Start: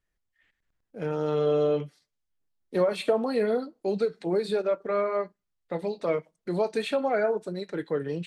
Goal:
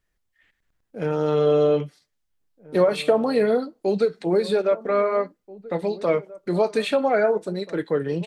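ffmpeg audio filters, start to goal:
ffmpeg -i in.wav -filter_complex "[0:a]asplit=2[link_01][link_02];[link_02]adelay=1633,volume=-19dB,highshelf=frequency=4000:gain=-36.7[link_03];[link_01][link_03]amix=inputs=2:normalize=0,volume=5.5dB" out.wav

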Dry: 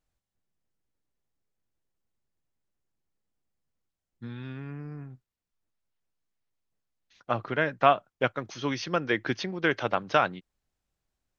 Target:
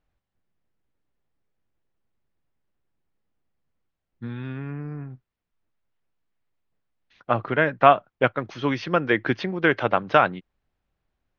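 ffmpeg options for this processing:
ffmpeg -i in.wav -af "lowpass=2900,volume=6dB" out.wav

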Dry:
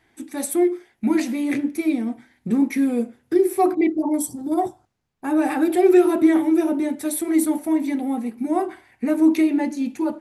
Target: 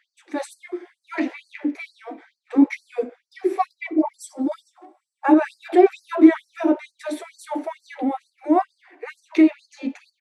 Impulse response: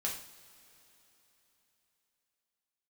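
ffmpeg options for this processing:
-filter_complex "[0:a]lowpass=6500,aemphasis=mode=reproduction:type=75fm,asettb=1/sr,asplit=3[link_01][link_02][link_03];[link_01]atrim=end=1.194[link_04];[link_02]atrim=start=1.19:end=1.8,asetpts=PTS-STARTPTS,afade=type=in:duration=0.004:curve=qsin,afade=type=out:start_time=0.606:duration=0.004:curve=qsin,acrossover=split=3200[link_05][link_06];[link_06]acompressor=threshold=-58dB:ratio=4:attack=1:release=60[link_07];[link_05][link_07]amix=inputs=2:normalize=0[link_08];[link_03]atrim=start=1.796[link_09];[link_04][link_08]acrossfade=duration=0.004:curve1=hsin:curve2=qsin[link_10];[link_10][link_09]acrossfade=duration=0.004:curve1=qsin:curve2=hsin,asettb=1/sr,asplit=3[link_11][link_12][link_13];[link_11]atrim=end=4.144[link_14];[link_12]atrim=start=4.14:end=5.34,asetpts=PTS-STARTPTS,afade=type=in:duration=0.004:curve=qsin,afade=type=out:start_time=1.196:duration=0.004:curve=qsin,aecho=1:1:3.6:0.96,atrim=end_sample=52920[link_15];[link_13]atrim=start=5.336[link_16];[link_14][link_15]acrossfade=duration=0.004:curve1=hsin:curve2=qsin[link_17];[link_17][link_16]acrossfade=duration=0.004:curve1=qsin:curve2=hsin,asplit=2[link_18][link_19];[link_19]adelay=240,highpass=300,lowpass=3400,asoftclip=type=hard:threshold=-14dB,volume=-29dB[link_20];[link_18][link_20]amix=inputs=2:normalize=0,asplit=2[link_21][link_22];[1:a]atrim=start_sample=2205[link_23];[link_22][link_23]afir=irnorm=-1:irlink=0,volume=-19dB[link_24];[link_21][link_24]amix=inputs=2:normalize=0,afftfilt=real='re*gte(b*sr/1024,230*pow(4300/230,0.5+0.5*sin(2*PI*2.2*pts/sr)))':imag='im*gte(b*sr/1024,230*pow(4300/230,0.5+0.5*sin(2*PI*2.2*pts/sr)))':win_size=1024:overlap=0.75,volume=4dB"

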